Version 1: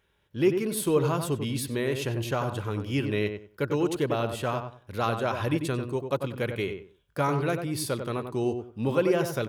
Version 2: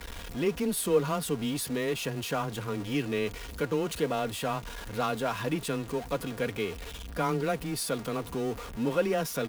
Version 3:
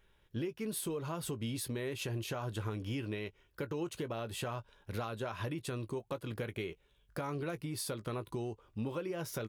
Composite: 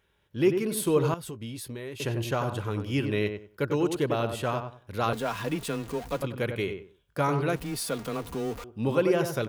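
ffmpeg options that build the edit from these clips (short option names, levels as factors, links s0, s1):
-filter_complex "[1:a]asplit=2[s0][s1];[0:a]asplit=4[s2][s3][s4][s5];[s2]atrim=end=1.142[s6];[2:a]atrim=start=1.138:end=2.002[s7];[s3]atrim=start=1.998:end=5.132[s8];[s0]atrim=start=5.128:end=6.222[s9];[s4]atrim=start=6.218:end=7.562[s10];[s1]atrim=start=7.558:end=8.642[s11];[s5]atrim=start=8.638[s12];[s6][s7]acrossfade=d=0.004:c1=hsin:c2=hsin[s13];[s13][s8]acrossfade=d=0.004:c1=hsin:c2=hsin[s14];[s14][s9]acrossfade=d=0.004:c1=hsin:c2=hsin[s15];[s15][s10]acrossfade=d=0.004:c1=hsin:c2=hsin[s16];[s16][s11]acrossfade=d=0.004:c1=hsin:c2=hsin[s17];[s17][s12]acrossfade=d=0.004:c1=hsin:c2=hsin"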